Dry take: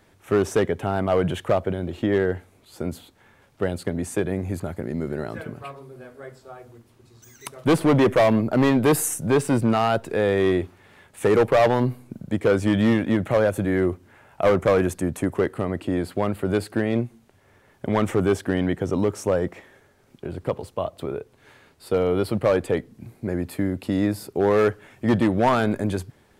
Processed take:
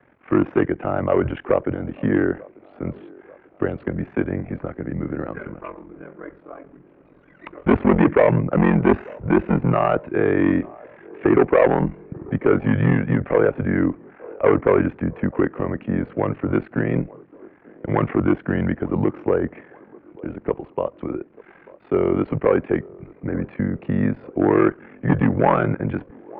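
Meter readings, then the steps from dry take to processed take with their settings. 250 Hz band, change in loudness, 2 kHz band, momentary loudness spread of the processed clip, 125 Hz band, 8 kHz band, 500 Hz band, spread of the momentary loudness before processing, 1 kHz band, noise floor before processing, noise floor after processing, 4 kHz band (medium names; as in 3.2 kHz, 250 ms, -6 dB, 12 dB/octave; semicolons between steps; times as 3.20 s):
+3.0 dB, +1.5 dB, +1.5 dB, 15 LU, +3.0 dB, under -40 dB, +1.0 dB, 14 LU, +1.5 dB, -58 dBFS, -52 dBFS, under -10 dB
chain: mistuned SSB -76 Hz 180–2500 Hz; ring modulator 22 Hz; feedback echo behind a band-pass 891 ms, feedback 55%, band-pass 570 Hz, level -22 dB; trim +5.5 dB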